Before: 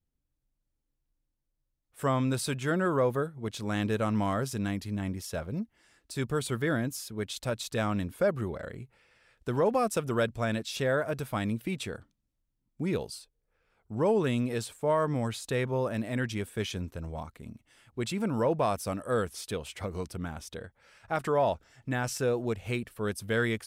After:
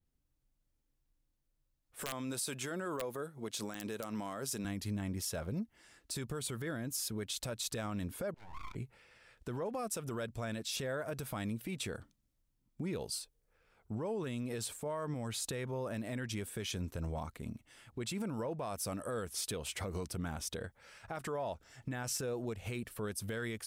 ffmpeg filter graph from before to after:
ffmpeg -i in.wav -filter_complex "[0:a]asettb=1/sr,asplit=3[link_01][link_02][link_03];[link_01]atrim=end=2.034[link_04];[link_02]atrim=start=2.03:end=4.65,asetpts=PTS-STARTPTS,afade=type=in:duration=0.004:curve=qsin,afade=type=out:start_time=2.616:duration=0.004:curve=qsin,highpass=150,bass=frequency=250:gain=-4,treble=frequency=4000:gain=4,aeval=exprs='(mod(6.68*val(0)+1,2)-1)/6.68':channel_layout=same[link_05];[link_03]atrim=start=4.646[link_06];[link_04][link_05]acrossfade=duration=0.004:curve1=hsin:curve2=qsin[link_07];[link_07][link_06]acrossfade=duration=0.004:curve1=qsin:curve2=hsin,asettb=1/sr,asplit=3[link_08][link_09][link_10];[link_08]atrim=end=8.344[link_11];[link_09]atrim=start=8.34:end=8.75,asetpts=PTS-STARTPTS,afade=type=in:duration=0.004:curve=qsin,afade=type=out:start_time=0.406:duration=0.004:curve=qsin,asplit=3[link_12][link_13][link_14];[link_12]bandpass=frequency=530:width_type=q:width=8,volume=0dB[link_15];[link_13]bandpass=frequency=1840:width_type=q:width=8,volume=-6dB[link_16];[link_14]bandpass=frequency=2480:width_type=q:width=8,volume=-9dB[link_17];[link_15][link_16][link_17]amix=inputs=3:normalize=0,equalizer=frequency=2300:width_type=o:width=0.81:gain=7.5,aeval=exprs='abs(val(0))':channel_layout=same[link_18];[link_10]atrim=start=8.746[link_19];[link_11][link_18]acrossfade=duration=0.004:curve1=hsin:curve2=qsin[link_20];[link_20][link_19]acrossfade=duration=0.004:curve1=qsin:curve2=hsin,acompressor=threshold=-35dB:ratio=4,alimiter=level_in=8dB:limit=-24dB:level=0:latency=1:release=50,volume=-8dB,adynamicequalizer=threshold=0.00178:dfrequency=4800:dqfactor=0.7:tfrequency=4800:tqfactor=0.7:attack=5:release=100:ratio=0.375:range=2.5:mode=boostabove:tftype=highshelf,volume=1.5dB" out.wav

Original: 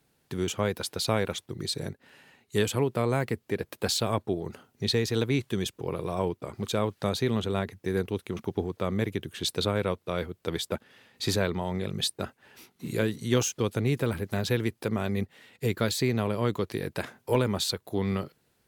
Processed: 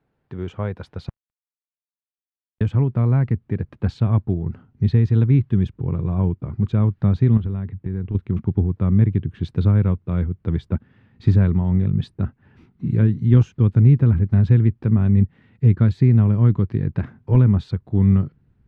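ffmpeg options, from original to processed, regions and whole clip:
ffmpeg -i in.wav -filter_complex "[0:a]asettb=1/sr,asplit=3[link_01][link_02][link_03];[link_01]atrim=end=1.094[link_04];[link_02]atrim=start=1.09:end=2.61,asetpts=PTS-STARTPTS,afade=type=in:duration=0.004:curve=qsin,afade=type=out:start_time=1.516:duration=0.004:curve=qsin,acompressor=threshold=-49dB:ratio=2:attack=3.2:release=140:knee=1:detection=peak,acrusher=bits=3:mix=0:aa=0.5[link_05];[link_03]atrim=start=2.606[link_06];[link_04][link_05]acrossfade=duration=0.004:curve1=hsin:curve2=qsin[link_07];[link_07][link_06]acrossfade=duration=0.004:curve1=qsin:curve2=hsin,asettb=1/sr,asplit=3[link_08][link_09][link_10];[link_08]atrim=end=7.374[link_11];[link_09]atrim=start=7.37:end=8.15,asetpts=PTS-STARTPTS,afade=type=in:duration=0.004:curve=qsin,afade=type=out:start_time=0.776:duration=0.004:curve=qsin,acompressor=threshold=-34dB:ratio=3:attack=3.2:release=140:knee=1:detection=peak,lowpass=frequency=4300:width=0.5412,lowpass=frequency=4300:width=1.3066[link_12];[link_10]atrim=start=8.146[link_13];[link_11][link_12]acrossfade=duration=0.004:curve1=hsin:curve2=qsin[link_14];[link_14][link_13]acrossfade=duration=0.004:curve1=qsin:curve2=hsin,lowpass=1600,asubboost=boost=11.5:cutoff=160" out.wav

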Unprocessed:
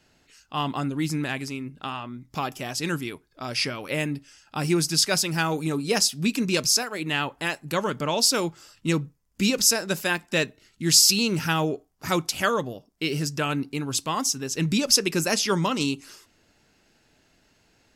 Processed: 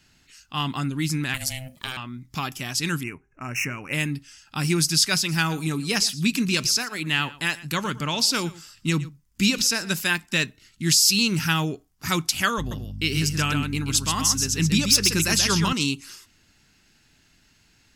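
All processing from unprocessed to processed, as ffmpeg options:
ffmpeg -i in.wav -filter_complex "[0:a]asettb=1/sr,asplit=3[link_01][link_02][link_03];[link_01]atrim=end=1.344[link_04];[link_02]atrim=start=1.34:end=1.97,asetpts=PTS-STARTPTS,afade=type=in:duration=0.004:curve=qsin,afade=type=out:start_time=0.626:duration=0.004:curve=qsin,aemphasis=mode=production:type=75fm,aeval=exprs='val(0)*sin(2*PI*390*n/s)':channel_layout=same[link_05];[link_03]atrim=start=1.966[link_06];[link_04][link_05]acrossfade=duration=0.004:curve1=hsin:curve2=qsin[link_07];[link_07][link_06]acrossfade=duration=0.004:curve1=qsin:curve2=hsin,asettb=1/sr,asplit=3[link_08][link_09][link_10];[link_08]atrim=end=3.034[link_11];[link_09]atrim=start=3.03:end=3.93,asetpts=PTS-STARTPTS,afade=type=in:duration=0.004:curve=qsin,afade=type=out:start_time=0.896:duration=0.004:curve=qsin,bandreject=frequency=395.4:width_type=h:width=4,bandreject=frequency=790.8:width_type=h:width=4,adynamicsmooth=sensitivity=5.5:basefreq=4200,asuperstop=centerf=4000:order=20:qfactor=1.5[link_12];[link_10]atrim=start=3.926[link_13];[link_11][link_12]acrossfade=duration=0.004:curve1=hsin:curve2=qsin[link_14];[link_14][link_13]acrossfade=duration=0.004:curve1=qsin:curve2=hsin,asettb=1/sr,asplit=3[link_15][link_16][link_17];[link_15]atrim=end=5.174[link_18];[link_16]atrim=start=5.17:end=9.94,asetpts=PTS-STARTPTS,afade=type=in:duration=0.004:curve=qsin,afade=type=out:start_time=4.766:duration=0.004:curve=qsin,acrossover=split=4500[link_19][link_20];[link_20]acompressor=threshold=-28dB:ratio=4:attack=1:release=60[link_21];[link_19][link_21]amix=inputs=2:normalize=0,aecho=1:1:116:0.112,atrim=end_sample=210357[link_22];[link_17]atrim=start=9.936[link_23];[link_18][link_22]acrossfade=duration=0.004:curve1=hsin:curve2=qsin[link_24];[link_24][link_23]acrossfade=duration=0.004:curve1=qsin:curve2=hsin,asettb=1/sr,asplit=3[link_25][link_26][link_27];[link_25]atrim=end=12.584[link_28];[link_26]atrim=start=12.58:end=15.73,asetpts=PTS-STARTPTS,afade=type=in:duration=0.004:curve=qsin,afade=type=out:start_time=3.146:duration=0.004:curve=qsin,volume=12dB,asoftclip=hard,volume=-12dB,aeval=exprs='val(0)+0.0178*(sin(2*PI*50*n/s)+sin(2*PI*2*50*n/s)/2+sin(2*PI*3*50*n/s)/3+sin(2*PI*4*50*n/s)/4+sin(2*PI*5*50*n/s)/5)':channel_layout=same,aecho=1:1:131:0.531,atrim=end_sample=138915[link_29];[link_27]atrim=start=15.726[link_30];[link_28][link_29]acrossfade=duration=0.004:curve1=hsin:curve2=qsin[link_31];[link_31][link_30]acrossfade=duration=0.004:curve1=qsin:curve2=hsin,equalizer=frequency=550:width_type=o:width=1.6:gain=-13.5,alimiter=level_in=12dB:limit=-1dB:release=50:level=0:latency=1,volume=-7dB" out.wav

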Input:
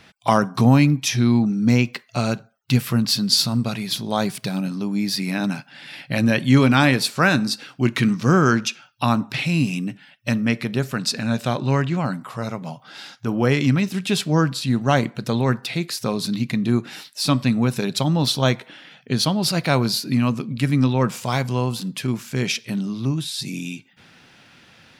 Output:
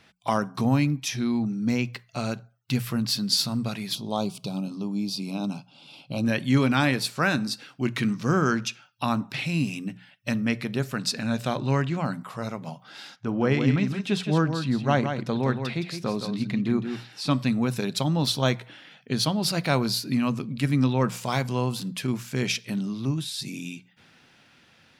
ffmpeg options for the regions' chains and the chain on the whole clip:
ffmpeg -i in.wav -filter_complex "[0:a]asettb=1/sr,asplit=3[link_01][link_02][link_03];[link_01]atrim=end=3.954[link_04];[link_02]atrim=start=3.95:end=6.25,asetpts=PTS-STARTPTS,afade=type=in:duration=0.004:curve=qsin,afade=type=out:start_time=2.296:duration=0.004:curve=qsin,asuperstop=centerf=1800:order=4:qfactor=1.2,highshelf=frequency=10000:gain=-10.5,asoftclip=type=hard:threshold=-9dB[link_05];[link_03]atrim=start=6.246[link_06];[link_04][link_05]acrossfade=duration=0.004:curve1=hsin:curve2=qsin[link_07];[link_07][link_06]acrossfade=duration=0.004:curve1=qsin:curve2=hsin,asettb=1/sr,asplit=3[link_08][link_09][link_10];[link_08]atrim=end=13.164[link_11];[link_09]atrim=start=13.16:end=17.31,asetpts=PTS-STARTPTS,afade=type=in:duration=0.004:curve=qsin,afade=type=out:start_time=4.146:duration=0.004:curve=qsin,aemphasis=mode=reproduction:type=50fm,aecho=1:1:167:0.422,atrim=end_sample=183015[link_12];[link_10]atrim=start=17.306[link_13];[link_11][link_12]acrossfade=duration=0.004:curve1=hsin:curve2=qsin[link_14];[link_14][link_13]acrossfade=duration=0.004:curve1=qsin:curve2=hsin,bandreject=frequency=60:width_type=h:width=6,bandreject=frequency=120:width_type=h:width=6,bandreject=frequency=180:width_type=h:width=6,dynaudnorm=framelen=720:gausssize=7:maxgain=11.5dB,volume=-7.5dB" out.wav

